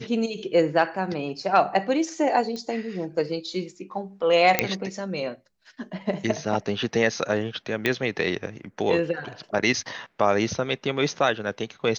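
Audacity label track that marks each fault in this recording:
2.560000	2.560000	pop -21 dBFS
4.590000	4.590000	pop -2 dBFS
7.860000	7.860000	pop -9 dBFS

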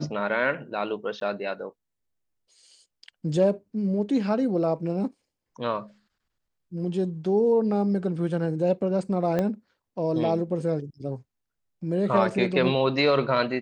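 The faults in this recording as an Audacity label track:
1.200000	1.210000	dropout
9.390000	9.390000	pop -14 dBFS

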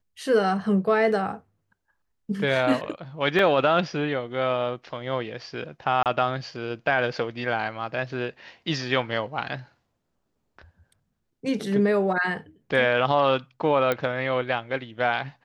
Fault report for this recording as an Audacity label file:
3.390000	3.390000	dropout 2.3 ms
6.030000	6.060000	dropout 28 ms
13.920000	13.920000	pop -11 dBFS

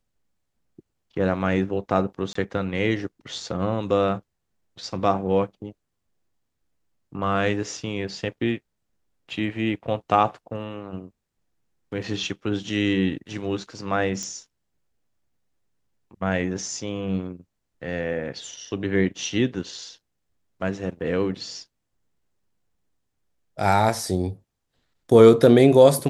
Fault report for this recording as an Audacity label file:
2.330000	2.350000	dropout 24 ms
14.230000	14.230000	pop -19 dBFS

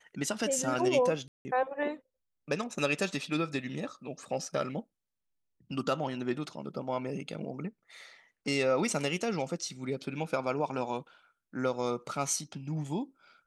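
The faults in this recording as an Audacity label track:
1.280000	1.450000	dropout 170 ms

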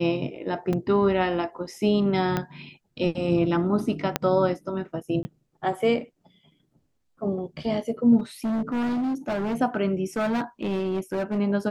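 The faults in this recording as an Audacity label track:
0.730000	0.730000	dropout 3.8 ms
2.370000	2.370000	pop -12 dBFS
4.160000	4.160000	pop -6 dBFS
5.230000	5.250000	dropout 20 ms
8.190000	9.560000	clipped -23.5 dBFS
10.160000	11.390000	clipped -22 dBFS

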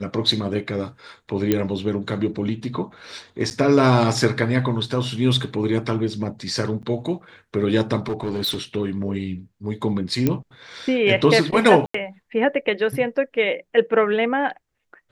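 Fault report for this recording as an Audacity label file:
1.520000	1.520000	pop -6 dBFS
3.500000	3.510000	dropout 9.1 ms
6.820000	6.830000	dropout 8.5 ms
8.060000	8.580000	clipped -20.5 dBFS
10.270000	10.270000	pop -7 dBFS
11.860000	11.940000	dropout 84 ms

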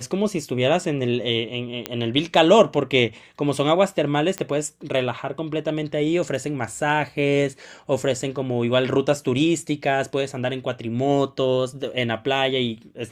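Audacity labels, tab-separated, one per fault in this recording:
1.860000	1.860000	pop -9 dBFS
4.380000	4.380000	pop -12 dBFS

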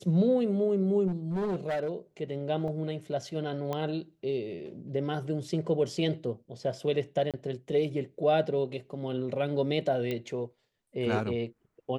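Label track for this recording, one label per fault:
1.070000	1.920000	clipped -27 dBFS
2.680000	2.680000	dropout 2.3 ms
3.730000	3.730000	pop -20 dBFS
7.310000	7.340000	dropout 27 ms
10.110000	10.110000	pop -20 dBFS

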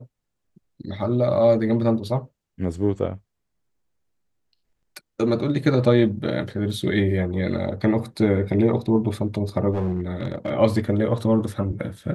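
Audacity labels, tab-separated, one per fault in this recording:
9.710000	10.510000	clipped -19.5 dBFS

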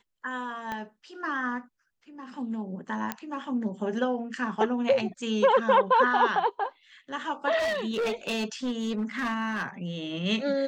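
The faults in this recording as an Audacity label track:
0.720000	0.720000	pop -20 dBFS
3.120000	3.120000	pop -14 dBFS
7.580000	9.680000	clipped -25 dBFS

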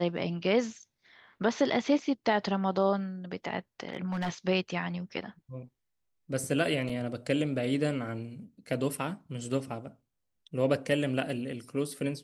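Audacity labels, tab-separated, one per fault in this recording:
3.900000	4.300000	clipped -26.5 dBFS
6.890000	6.890000	dropout 4.8 ms

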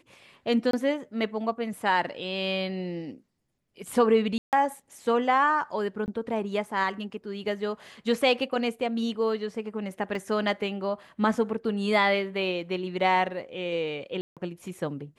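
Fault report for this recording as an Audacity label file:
0.710000	0.730000	dropout 23 ms
4.380000	4.530000	dropout 148 ms
6.060000	6.080000	dropout 19 ms
10.150000	10.150000	dropout 2.2 ms
14.210000	14.370000	dropout 157 ms

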